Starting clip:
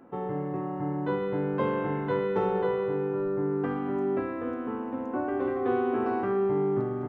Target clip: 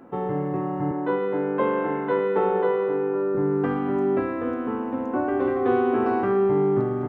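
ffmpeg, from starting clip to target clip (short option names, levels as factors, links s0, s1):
-filter_complex "[0:a]asettb=1/sr,asplit=3[s0][s1][s2];[s0]atrim=end=0.914[s3];[s1]atrim=start=0.91:end=3.35,asetpts=PTS-STARTPTS,afade=t=in:d=0.004:c=qsin,afade=t=out:st=2.436:d=0.004:c=qsin,acrossover=split=200 3000:gain=0.0708 1 0.224[s4][s5][s6];[s4][s5][s6]amix=inputs=3:normalize=0[s7];[s2]atrim=start=3.346[s8];[s3][s7]acrossfade=d=0.004:c1=hsin:c2=qsin[s9];[s9][s8]acrossfade=d=0.004:c1=qsin:c2=hsin,volume=1.88"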